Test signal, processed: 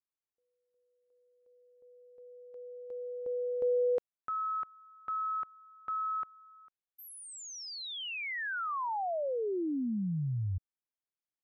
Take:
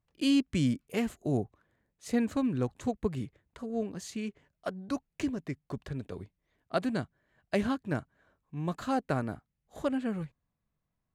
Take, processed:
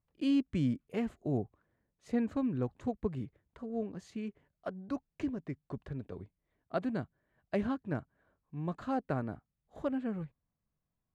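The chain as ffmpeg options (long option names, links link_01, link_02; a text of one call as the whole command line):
ffmpeg -i in.wav -af "lowpass=frequency=1500:poles=1,volume=-3dB" out.wav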